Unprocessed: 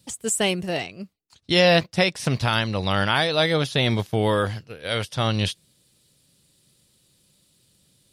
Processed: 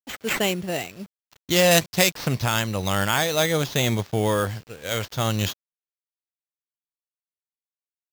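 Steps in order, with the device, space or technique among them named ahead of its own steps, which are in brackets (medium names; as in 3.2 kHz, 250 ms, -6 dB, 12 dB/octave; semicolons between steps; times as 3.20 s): early 8-bit sampler (sample-rate reducer 10 kHz, jitter 0%; bit crusher 8-bit); 1.71–2.11 s: peaking EQ 10 kHz +7 dB 2.8 oct; trim -1 dB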